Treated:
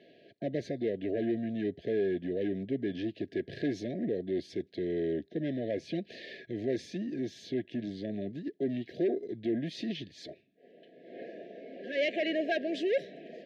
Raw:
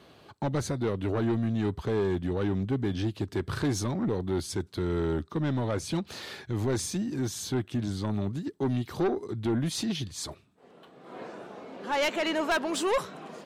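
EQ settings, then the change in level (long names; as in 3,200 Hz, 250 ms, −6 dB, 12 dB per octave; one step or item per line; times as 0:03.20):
high-pass filter 260 Hz 12 dB per octave
linear-phase brick-wall band-stop 720–1,600 Hz
high-frequency loss of the air 280 metres
0.0 dB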